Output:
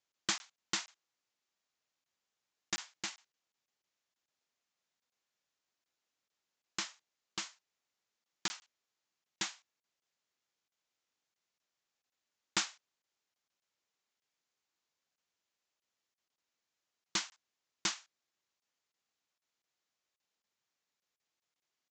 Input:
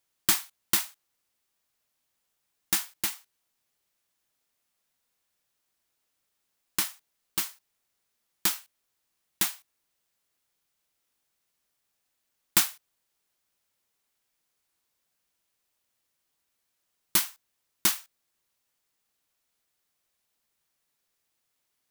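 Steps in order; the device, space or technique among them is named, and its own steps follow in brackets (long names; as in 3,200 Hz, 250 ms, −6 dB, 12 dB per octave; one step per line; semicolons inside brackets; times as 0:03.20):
call with lost packets (high-pass filter 170 Hz 6 dB per octave; downsampling to 16,000 Hz; dropped packets)
level −6 dB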